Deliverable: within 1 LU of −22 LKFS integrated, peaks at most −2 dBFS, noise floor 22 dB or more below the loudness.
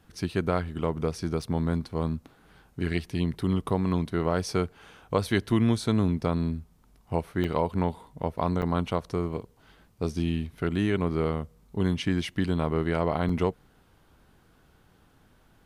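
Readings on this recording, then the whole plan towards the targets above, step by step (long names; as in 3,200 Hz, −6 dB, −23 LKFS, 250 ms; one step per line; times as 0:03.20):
number of dropouts 4; longest dropout 4.0 ms; integrated loudness −28.5 LKFS; sample peak −9.5 dBFS; target loudness −22.0 LKFS
→ repair the gap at 0:01.42/0:07.44/0:08.62/0:13.29, 4 ms
level +6.5 dB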